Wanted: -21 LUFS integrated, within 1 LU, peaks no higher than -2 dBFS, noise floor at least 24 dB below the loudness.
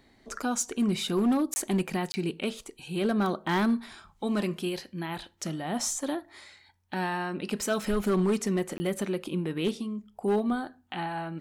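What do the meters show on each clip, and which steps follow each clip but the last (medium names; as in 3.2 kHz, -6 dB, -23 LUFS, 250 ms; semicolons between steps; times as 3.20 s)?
clipped samples 1.1%; clipping level -20.0 dBFS; dropouts 3; longest dropout 20 ms; loudness -30.0 LUFS; peak level -20.0 dBFS; loudness target -21.0 LUFS
-> clip repair -20 dBFS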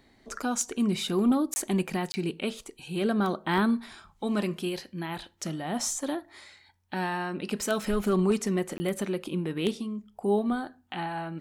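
clipped samples 0.0%; dropouts 3; longest dropout 20 ms
-> interpolate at 1.54/2.12/8.78 s, 20 ms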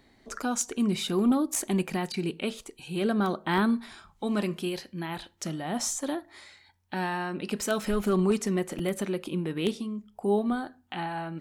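dropouts 0; loudness -29.5 LUFS; peak level -11.0 dBFS; loudness target -21.0 LUFS
-> trim +8.5 dB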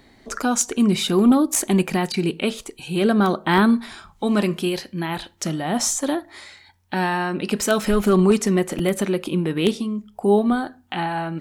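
loudness -21.0 LUFS; peak level -2.5 dBFS; noise floor -54 dBFS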